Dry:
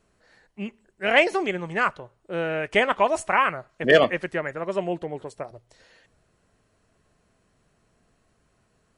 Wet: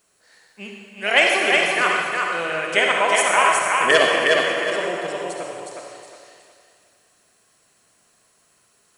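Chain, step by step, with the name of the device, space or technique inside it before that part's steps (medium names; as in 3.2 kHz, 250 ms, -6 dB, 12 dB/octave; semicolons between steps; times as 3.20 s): stairwell (reverberation RT60 1.6 s, pre-delay 44 ms, DRR 0.5 dB); RIAA curve recording; thinning echo 364 ms, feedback 32%, high-pass 180 Hz, level -3 dB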